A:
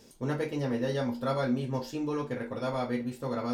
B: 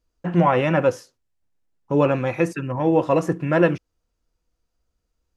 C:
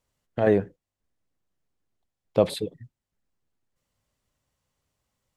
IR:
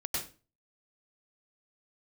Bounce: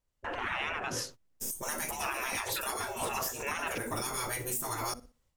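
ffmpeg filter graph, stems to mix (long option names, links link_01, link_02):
-filter_complex "[0:a]aexciter=amount=15.1:drive=2.7:freq=6300,adelay=1400,volume=0dB,asplit=2[link_01][link_02];[link_02]volume=-23.5dB[link_03];[1:a]lowshelf=frequency=150:gain=11,alimiter=limit=-12.5dB:level=0:latency=1:release=104,volume=2dB[link_04];[2:a]volume=-9.5dB[link_05];[link_01][link_04]amix=inputs=2:normalize=0,agate=range=-24dB:threshold=-48dB:ratio=16:detection=peak,alimiter=limit=-18dB:level=0:latency=1:release=178,volume=0dB[link_06];[link_03]aecho=0:1:61|122|183|244:1|0.24|0.0576|0.0138[link_07];[link_05][link_06][link_07]amix=inputs=3:normalize=0,afftfilt=real='re*lt(hypot(re,im),0.0631)':imag='im*lt(hypot(re,im),0.0631)':win_size=1024:overlap=0.75,dynaudnorm=framelen=230:gausssize=3:maxgain=10dB,alimiter=limit=-23dB:level=0:latency=1:release=264"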